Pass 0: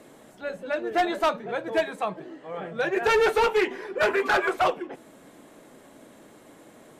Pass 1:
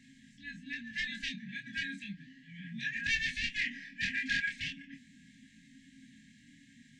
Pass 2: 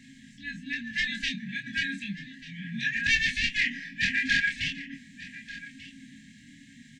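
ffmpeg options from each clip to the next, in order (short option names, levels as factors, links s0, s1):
-af "afftfilt=real='re*(1-between(b*sr/4096,290,1600))':imag='im*(1-between(b*sr/4096,290,1600))':win_size=4096:overlap=0.75,lowpass=f=6900:w=0.5412,lowpass=f=6900:w=1.3066,flanger=delay=22.5:depth=4.4:speed=0.34"
-af "aecho=1:1:1189:0.141,volume=2.37"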